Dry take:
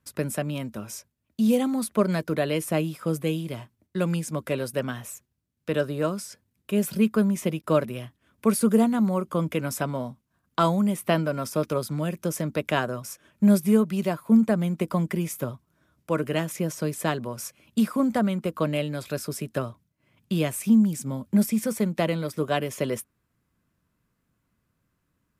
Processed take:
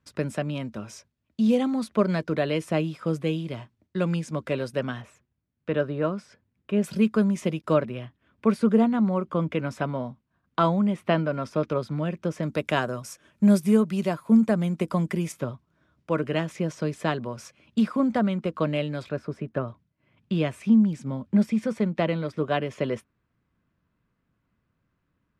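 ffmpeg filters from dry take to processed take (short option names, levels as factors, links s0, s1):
-af "asetnsamples=n=441:p=0,asendcmd='5.02 lowpass f 2600;6.84 lowpass f 6300;7.74 lowpass f 3300;12.43 lowpass f 8800;15.32 lowpass f 4500;19.09 lowpass f 1800;19.68 lowpass f 3400',lowpass=5100"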